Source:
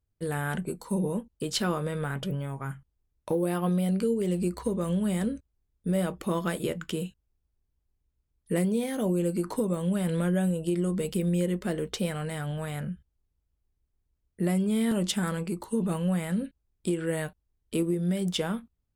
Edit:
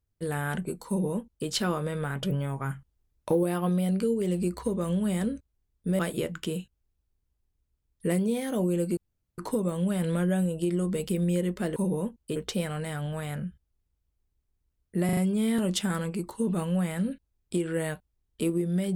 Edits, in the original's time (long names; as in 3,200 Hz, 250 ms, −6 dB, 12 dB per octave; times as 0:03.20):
0:00.88–0:01.48: duplicate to 0:11.81
0:02.23–0:03.43: clip gain +3 dB
0:05.99–0:06.45: remove
0:09.43: splice in room tone 0.41 s
0:14.50: stutter 0.04 s, 4 plays